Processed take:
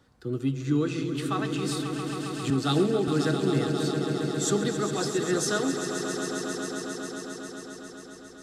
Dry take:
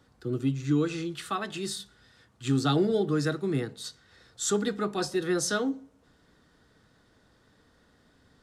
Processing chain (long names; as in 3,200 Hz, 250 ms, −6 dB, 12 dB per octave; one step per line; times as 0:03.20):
echo that builds up and dies away 135 ms, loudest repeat 5, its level −10 dB
0:02.50–0:03.08: multiband upward and downward expander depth 100%